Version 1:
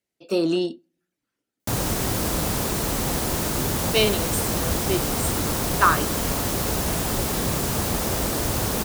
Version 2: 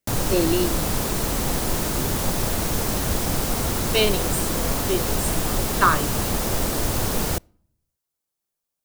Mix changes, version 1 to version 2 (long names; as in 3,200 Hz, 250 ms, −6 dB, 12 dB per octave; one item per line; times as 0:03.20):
background: entry −1.60 s
master: remove high-pass filter 44 Hz